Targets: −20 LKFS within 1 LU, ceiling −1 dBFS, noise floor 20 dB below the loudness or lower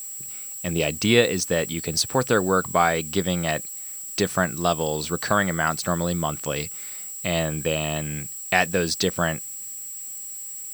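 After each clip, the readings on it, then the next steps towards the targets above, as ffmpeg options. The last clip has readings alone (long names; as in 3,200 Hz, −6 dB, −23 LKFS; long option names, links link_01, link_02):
interfering tone 7,700 Hz; level of the tone −34 dBFS; background noise floor −36 dBFS; target noise floor −44 dBFS; integrated loudness −24.0 LKFS; sample peak −3.0 dBFS; target loudness −20.0 LKFS
→ -af "bandreject=frequency=7700:width=30"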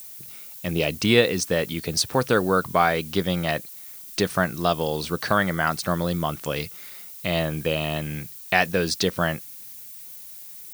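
interfering tone none found; background noise floor −41 dBFS; target noise floor −44 dBFS
→ -af "afftdn=noise_reduction=6:noise_floor=-41"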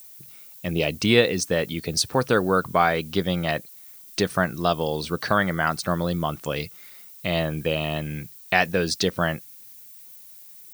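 background noise floor −46 dBFS; integrated loudness −24.0 LKFS; sample peak −2.5 dBFS; target loudness −20.0 LKFS
→ -af "volume=4dB,alimiter=limit=-1dB:level=0:latency=1"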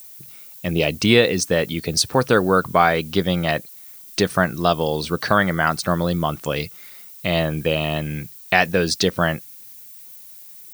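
integrated loudness −20.0 LKFS; sample peak −1.0 dBFS; background noise floor −42 dBFS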